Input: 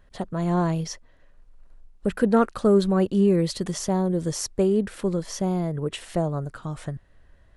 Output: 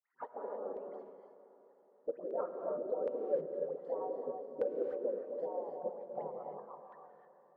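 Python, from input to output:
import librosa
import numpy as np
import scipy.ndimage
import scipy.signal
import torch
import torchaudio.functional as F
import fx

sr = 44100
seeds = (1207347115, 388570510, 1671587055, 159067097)

y = fx.envelope_sharpen(x, sr, power=2.0)
y = scipy.signal.sosfilt(scipy.signal.cheby1(8, 1.0, 180.0, 'highpass', fs=sr, output='sos'), y)
y = fx.spec_gate(y, sr, threshold_db=-20, keep='weak')
y = fx.leveller(y, sr, passes=1, at=(2.76, 4.97))
y = fx.rider(y, sr, range_db=3, speed_s=0.5)
y = fx.auto_wah(y, sr, base_hz=500.0, top_hz=1900.0, q=5.7, full_db=-48.0, direction='down')
y = fx.dispersion(y, sr, late='highs', ms=92.0, hz=1500.0)
y = 10.0 ** (-36.5 / 20.0) * np.tanh(y / 10.0 ** (-36.5 / 20.0))
y = fx.filter_lfo_lowpass(y, sr, shape='saw_down', hz=1.3, low_hz=530.0, high_hz=1800.0, q=0.85)
y = fx.echo_diffused(y, sr, ms=522, feedback_pct=42, wet_db=-15.5)
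y = fx.rev_gated(y, sr, seeds[0], gate_ms=340, shape='rising', drr_db=4.0)
y = y * 10.0 ** (16.5 / 20.0)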